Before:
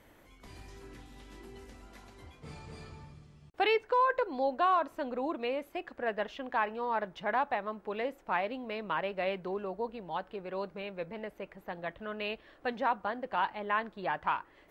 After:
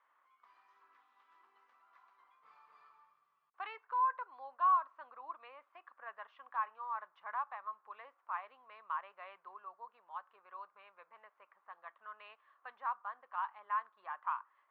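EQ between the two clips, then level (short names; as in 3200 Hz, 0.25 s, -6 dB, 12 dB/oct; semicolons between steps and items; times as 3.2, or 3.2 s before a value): ladder band-pass 1200 Hz, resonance 75%; -1.5 dB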